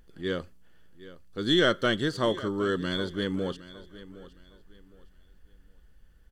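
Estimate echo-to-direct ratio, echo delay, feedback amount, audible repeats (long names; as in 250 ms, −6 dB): −16.5 dB, 763 ms, 28%, 2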